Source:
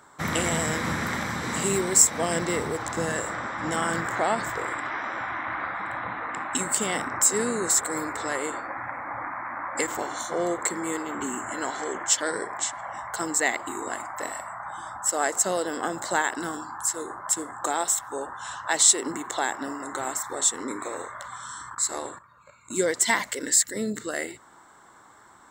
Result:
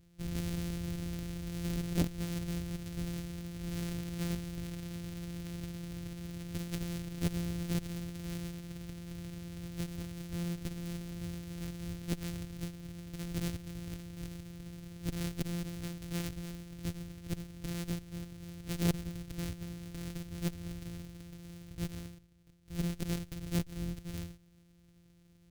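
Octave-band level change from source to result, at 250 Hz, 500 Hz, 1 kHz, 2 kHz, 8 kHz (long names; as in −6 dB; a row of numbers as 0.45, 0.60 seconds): −4.5, −17.0, −26.5, −21.5, −26.0 decibels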